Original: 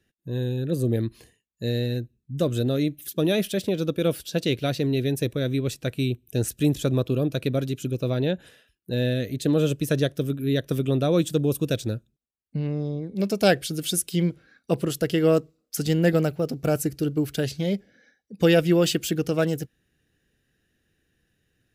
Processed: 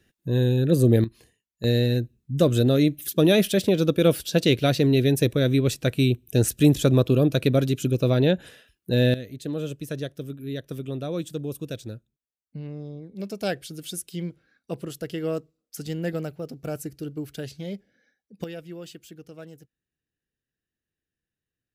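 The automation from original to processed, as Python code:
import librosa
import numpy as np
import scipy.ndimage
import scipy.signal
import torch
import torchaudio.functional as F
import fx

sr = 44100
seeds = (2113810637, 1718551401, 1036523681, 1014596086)

y = fx.gain(x, sr, db=fx.steps((0.0, 6.0), (1.04, -4.5), (1.64, 4.5), (9.14, -8.5), (18.44, -19.5)))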